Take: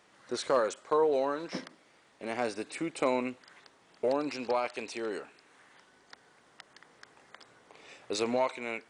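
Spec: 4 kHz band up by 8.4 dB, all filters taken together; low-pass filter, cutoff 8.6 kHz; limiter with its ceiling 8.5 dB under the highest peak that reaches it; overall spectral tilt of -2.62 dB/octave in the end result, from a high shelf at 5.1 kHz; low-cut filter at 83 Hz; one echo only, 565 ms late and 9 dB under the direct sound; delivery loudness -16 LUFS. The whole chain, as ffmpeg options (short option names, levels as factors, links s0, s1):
-af "highpass=83,lowpass=8600,equalizer=f=4000:t=o:g=7,highshelf=f=5100:g=6.5,alimiter=limit=0.0794:level=0:latency=1,aecho=1:1:565:0.355,volume=8.41"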